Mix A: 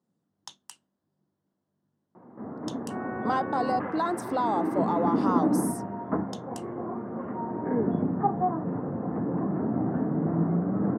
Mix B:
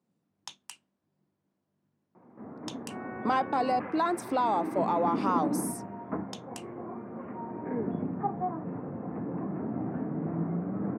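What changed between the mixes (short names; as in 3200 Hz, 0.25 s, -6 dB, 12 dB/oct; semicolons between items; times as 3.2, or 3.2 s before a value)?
background -6.0 dB; master: add bell 2400 Hz +12.5 dB 0.37 oct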